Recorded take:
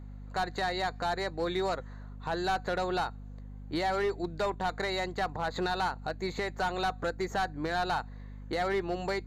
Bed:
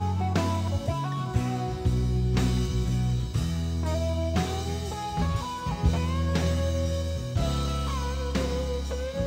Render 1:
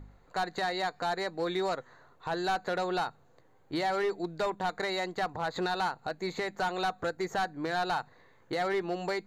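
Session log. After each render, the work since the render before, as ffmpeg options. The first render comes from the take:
-af "bandreject=f=50:t=h:w=4,bandreject=f=100:t=h:w=4,bandreject=f=150:t=h:w=4,bandreject=f=200:t=h:w=4,bandreject=f=250:t=h:w=4"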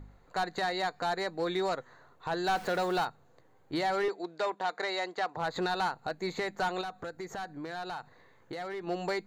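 -filter_complex "[0:a]asettb=1/sr,asplit=3[a][b][c];[a]atrim=end=2.474[d];[b]atrim=start=2.47:end=3.05,asetpts=PTS-STARTPTS,afade=t=in:d=0.004:c=qsin,afade=t=out:st=0.576:d=0.004:c=qsin,aeval=exprs='val(0)+0.5*0.01*sgn(val(0))':c=same[e];[c]atrim=start=3.046[f];[d][e]acrossfade=d=0.004:c1=hsin:c2=qsin[g];[g][f]acrossfade=d=0.004:c1=qsin:c2=hsin,asettb=1/sr,asplit=3[h][i][j];[h]atrim=end=4.084[k];[i]atrim=start=4.08:end=5.37,asetpts=PTS-STARTPTS,afade=t=in:d=0.004:c=qsin,afade=t=out:st=1.286:d=0.004:c=qsin,highpass=370,lowpass=7.2k[l];[j]atrim=start=5.366[m];[k][l]acrossfade=d=0.004:c1=hsin:c2=qsin[n];[n][m]acrossfade=d=0.004:c1=qsin:c2=hsin,asettb=1/sr,asplit=3[o][p][q];[o]atrim=end=6.814[r];[p]atrim=start=6.81:end=8.87,asetpts=PTS-STARTPTS,afade=t=in:d=0.004:c=qsin,afade=t=out:st=2.056:d=0.004:c=qsin,acompressor=threshold=-38dB:ratio=3:attack=3.2:release=140:knee=1:detection=peak[s];[q]atrim=start=8.866[t];[r][s]acrossfade=d=0.004:c1=hsin:c2=qsin[u];[u][t]acrossfade=d=0.004:c1=qsin:c2=hsin"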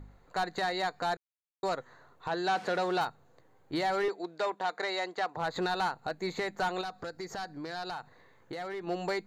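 -filter_complex "[0:a]asettb=1/sr,asplit=3[a][b][c];[a]atrim=end=2.284[d];[b]atrim=start=2.28:end=3.01,asetpts=PTS-STARTPTS,afade=t=in:d=0.004:c=qsin,afade=t=out:st=0.726:d=0.004:c=qsin,highpass=150,lowpass=6.9k[e];[c]atrim=start=3.006[f];[d][e]acrossfade=d=0.004:c1=hsin:c2=qsin[g];[g][f]acrossfade=d=0.004:c1=qsin:c2=hsin,asettb=1/sr,asplit=3[h][i][j];[h]atrim=end=6.854[k];[i]atrim=start=6.85:end=7.91,asetpts=PTS-STARTPTS,afade=t=in:d=0.004:c=qsin,afade=t=out:st=1.056:d=0.004:c=qsin,equalizer=f=4.9k:t=o:w=0.37:g=12[l];[j]atrim=start=7.906[m];[k][l]acrossfade=d=0.004:c1=hsin:c2=qsin[n];[n][m]acrossfade=d=0.004:c1=qsin:c2=hsin,asplit=3[o][p][q];[o]atrim=end=1.17,asetpts=PTS-STARTPTS,afade=t=out:st=1.166:d=0.004:c=hsin[r];[p]atrim=start=1.17:end=1.63,asetpts=PTS-STARTPTS,volume=0[s];[q]atrim=start=1.63,asetpts=PTS-STARTPTS,afade=t=in:d=0.004:c=hsin[t];[r][s][t]concat=n=3:v=0:a=1"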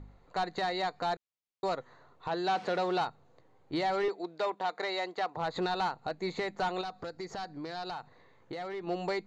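-af "lowpass=5.7k,equalizer=f=1.6k:t=o:w=0.37:g=-5.5"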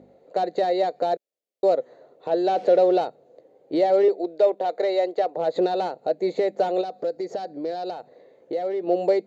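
-af "highpass=330,lowshelf=f=780:t=q:w=3:g=10.5"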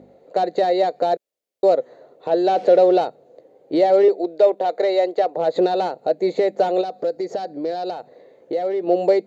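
-af "volume=4dB"

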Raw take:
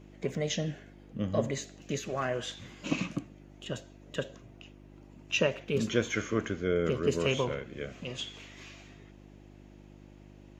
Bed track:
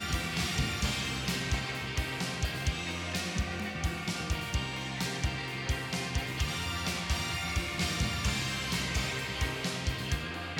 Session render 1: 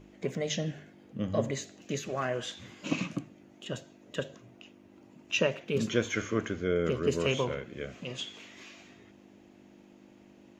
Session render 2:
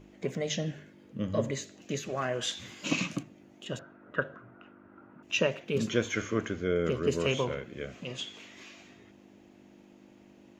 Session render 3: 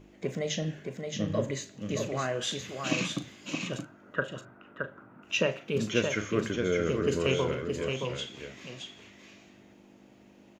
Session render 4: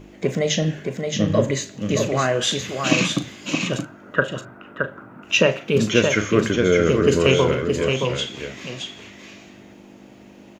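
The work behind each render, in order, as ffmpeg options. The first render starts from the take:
-af "bandreject=f=50:t=h:w=4,bandreject=f=100:t=h:w=4,bandreject=f=150:t=h:w=4"
-filter_complex "[0:a]asettb=1/sr,asplit=3[a][b][c];[a]atrim=end=0.754[d];[b]atrim=start=0.75:end=1.74,asetpts=PTS-STARTPTS,afade=t=in:d=0.004:c=qsin,afade=t=out:st=0.986:d=0.004:c=qsin,asuperstop=centerf=740:order=4:qfactor=4.9[e];[c]atrim=start=1.736[f];[d][e]acrossfade=d=0.004:c1=hsin:c2=qsin[g];[g][f]acrossfade=d=0.004:c1=qsin:c2=hsin,asettb=1/sr,asplit=3[h][i][j];[h]atrim=end=2.414[k];[i]atrim=start=2.41:end=3.23,asetpts=PTS-STARTPTS,afade=t=in:d=0.004:c=qsin,afade=t=out:st=0.816:d=0.004:c=qsin,highshelf=f=2k:g=8.5[l];[j]atrim=start=3.226[m];[k][l]acrossfade=d=0.004:c1=hsin:c2=qsin[n];[n][m]acrossfade=d=0.004:c1=qsin:c2=hsin,asettb=1/sr,asplit=3[o][p][q];[o]atrim=end=3.794[r];[p]atrim=start=3.79:end=5.23,asetpts=PTS-STARTPTS,afade=t=in:d=0.004:c=qsin,afade=t=out:st=1.436:d=0.004:c=qsin,lowpass=f=1.4k:t=q:w=8.6[s];[q]atrim=start=5.226[t];[r][s]acrossfade=d=0.004:c1=hsin:c2=qsin[u];[u][t]acrossfade=d=0.004:c1=qsin:c2=hsin"
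-filter_complex "[0:a]asplit=2[a][b];[b]adelay=38,volume=-12dB[c];[a][c]amix=inputs=2:normalize=0,aecho=1:1:621:0.562"
-af "volume=11dB,alimiter=limit=-3dB:level=0:latency=1"

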